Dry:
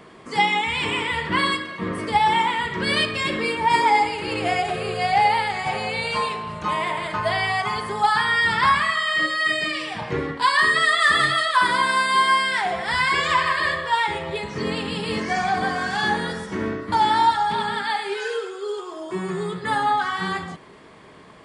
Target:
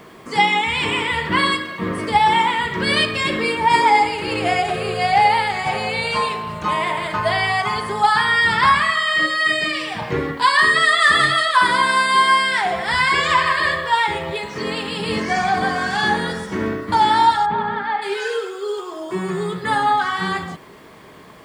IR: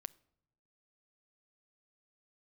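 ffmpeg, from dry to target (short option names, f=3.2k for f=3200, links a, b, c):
-filter_complex "[0:a]acrusher=bits=9:mix=0:aa=0.000001,asettb=1/sr,asplit=3[a][b][c];[a]atrim=end=14.334[d];[b]atrim=start=14.33:end=15,asetpts=PTS-STARTPTS,afade=t=in:d=0.004:c=qsin,afade=t=out:st=0.666:d=0.004:c=qsin,lowshelf=f=240:g=-9[e];[c]atrim=start=14.996[f];[d][e]acrossfade=d=0.004:c1=hsin:c2=qsin[g];[g][f]acrossfade=d=0.004:c1=qsin:c2=hsin,asplit=3[h][i][j];[h]afade=t=out:st=17.45:d=0.02[k];[i]lowpass=1.7k,afade=t=in:st=17.45:d=0.02,afade=t=out:st=18.01:d=0.02[l];[j]afade=t=in:st=18.01:d=0.02[m];[k][l][m]amix=inputs=3:normalize=0,volume=3.5dB"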